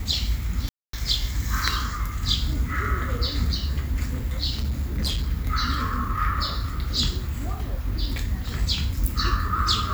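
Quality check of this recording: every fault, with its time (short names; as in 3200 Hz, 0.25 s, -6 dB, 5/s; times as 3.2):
0.69–0.93 gap 0.243 s
4.54–5.28 clipped -21.5 dBFS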